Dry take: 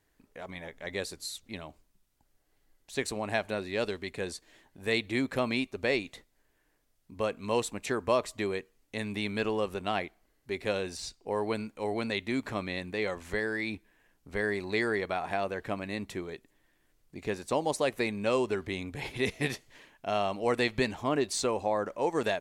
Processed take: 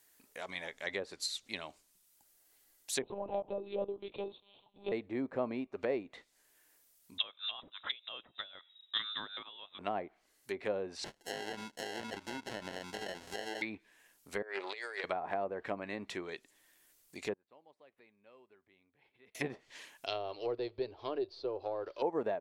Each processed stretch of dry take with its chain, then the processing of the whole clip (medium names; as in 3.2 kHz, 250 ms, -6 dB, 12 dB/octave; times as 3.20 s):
3.02–4.92 s: Butterworth band-stop 1.7 kHz, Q 0.82 + peaking EQ 1.2 kHz +5.5 dB 0.61 oct + monotone LPC vocoder at 8 kHz 200 Hz
7.18–9.79 s: peaking EQ 2.1 kHz -3.5 dB 2.8 oct + frequency inversion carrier 3.8 kHz
11.04–13.62 s: compression 10:1, threshold -34 dBFS + sample-rate reducer 1.2 kHz
14.42–15.04 s: Chebyshev high-pass 470 Hz, order 3 + compressor with a negative ratio -38 dBFS, ratio -0.5 + loudspeaker Doppler distortion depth 0.15 ms
17.33–19.35 s: de-esser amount 90% + inverted gate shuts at -34 dBFS, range -29 dB + distance through air 440 m
20.06–22.02 s: partial rectifier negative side -3 dB + FFT filter 120 Hz 0 dB, 180 Hz -25 dB, 370 Hz +1 dB, 770 Hz -8 dB, 2 kHz -9 dB, 3.1 kHz +3 dB, 4.7 kHz +13 dB, 7.3 kHz -19 dB
whole clip: low-pass that closes with the level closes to 710 Hz, closed at -29 dBFS; RIAA curve recording